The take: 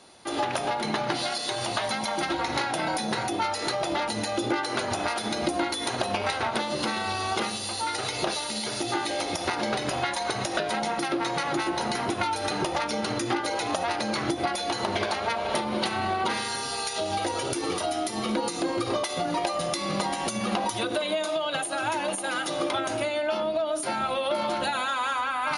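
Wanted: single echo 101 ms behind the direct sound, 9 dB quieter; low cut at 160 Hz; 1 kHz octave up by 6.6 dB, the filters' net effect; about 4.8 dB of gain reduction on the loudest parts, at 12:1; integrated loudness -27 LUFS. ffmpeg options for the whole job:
-af "highpass=160,equalizer=f=1000:t=o:g=8.5,acompressor=threshold=0.0708:ratio=12,aecho=1:1:101:0.355"

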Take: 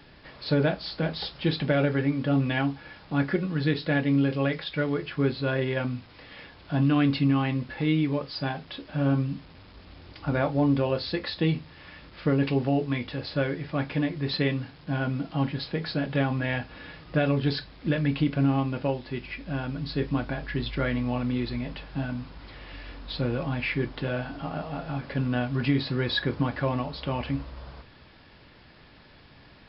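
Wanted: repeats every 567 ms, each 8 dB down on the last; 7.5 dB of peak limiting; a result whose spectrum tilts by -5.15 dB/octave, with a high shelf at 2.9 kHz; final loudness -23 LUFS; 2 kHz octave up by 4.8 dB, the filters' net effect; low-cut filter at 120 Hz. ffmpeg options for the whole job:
-af "highpass=120,equalizer=f=2000:t=o:g=8.5,highshelf=f=2900:g=-6.5,alimiter=limit=0.158:level=0:latency=1,aecho=1:1:567|1134|1701|2268|2835:0.398|0.159|0.0637|0.0255|0.0102,volume=1.88"

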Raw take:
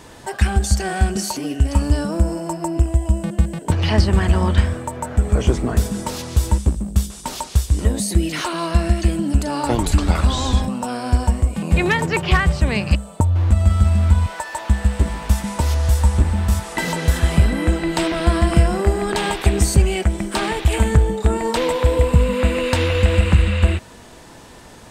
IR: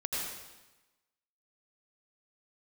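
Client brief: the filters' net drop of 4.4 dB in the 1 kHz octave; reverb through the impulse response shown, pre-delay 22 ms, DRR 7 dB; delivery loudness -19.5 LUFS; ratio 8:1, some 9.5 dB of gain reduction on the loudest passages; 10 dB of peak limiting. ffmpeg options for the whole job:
-filter_complex "[0:a]equalizer=f=1000:t=o:g=-5.5,acompressor=threshold=0.112:ratio=8,alimiter=limit=0.133:level=0:latency=1,asplit=2[s0][s1];[1:a]atrim=start_sample=2205,adelay=22[s2];[s1][s2]afir=irnorm=-1:irlink=0,volume=0.251[s3];[s0][s3]amix=inputs=2:normalize=0,volume=2.37"

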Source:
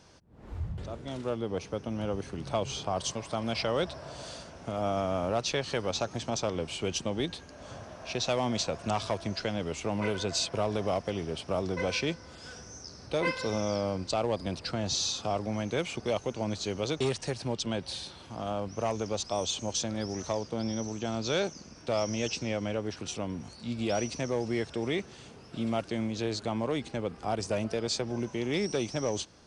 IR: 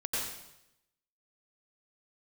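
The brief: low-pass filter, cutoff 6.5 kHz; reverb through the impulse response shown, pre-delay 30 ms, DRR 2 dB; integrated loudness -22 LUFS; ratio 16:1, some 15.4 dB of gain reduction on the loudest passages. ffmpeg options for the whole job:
-filter_complex "[0:a]lowpass=6500,acompressor=threshold=0.01:ratio=16,asplit=2[s0][s1];[1:a]atrim=start_sample=2205,adelay=30[s2];[s1][s2]afir=irnorm=-1:irlink=0,volume=0.422[s3];[s0][s3]amix=inputs=2:normalize=0,volume=11.2"

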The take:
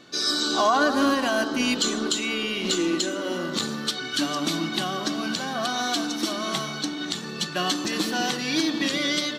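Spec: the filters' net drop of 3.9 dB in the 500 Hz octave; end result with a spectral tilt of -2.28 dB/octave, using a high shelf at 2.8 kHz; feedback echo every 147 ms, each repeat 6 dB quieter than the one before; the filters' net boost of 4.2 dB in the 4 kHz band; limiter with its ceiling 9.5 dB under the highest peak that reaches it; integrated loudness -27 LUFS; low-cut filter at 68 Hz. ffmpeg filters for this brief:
-af "highpass=68,equalizer=f=500:t=o:g=-5.5,highshelf=f=2800:g=-5,equalizer=f=4000:t=o:g=9,alimiter=limit=0.141:level=0:latency=1,aecho=1:1:147|294|441|588|735|882:0.501|0.251|0.125|0.0626|0.0313|0.0157,volume=0.794"

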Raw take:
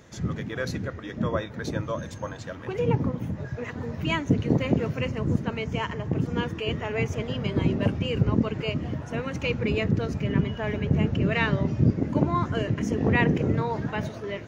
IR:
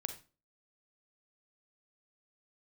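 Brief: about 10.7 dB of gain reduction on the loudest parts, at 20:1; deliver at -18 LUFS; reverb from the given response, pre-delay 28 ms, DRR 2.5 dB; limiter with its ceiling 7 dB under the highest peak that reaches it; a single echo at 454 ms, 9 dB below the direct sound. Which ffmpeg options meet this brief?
-filter_complex "[0:a]acompressor=threshold=0.0447:ratio=20,alimiter=limit=0.0668:level=0:latency=1,aecho=1:1:454:0.355,asplit=2[s0][s1];[1:a]atrim=start_sample=2205,adelay=28[s2];[s1][s2]afir=irnorm=-1:irlink=0,volume=0.794[s3];[s0][s3]amix=inputs=2:normalize=0,volume=5.01"

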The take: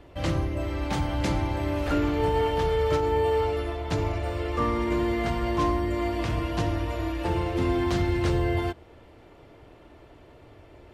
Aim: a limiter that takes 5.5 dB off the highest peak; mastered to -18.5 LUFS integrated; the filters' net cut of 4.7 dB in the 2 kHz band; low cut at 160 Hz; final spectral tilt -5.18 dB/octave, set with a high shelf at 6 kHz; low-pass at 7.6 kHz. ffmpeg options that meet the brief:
-af "highpass=160,lowpass=7600,equalizer=f=2000:t=o:g=-6.5,highshelf=f=6000:g=7.5,volume=3.76,alimiter=limit=0.355:level=0:latency=1"

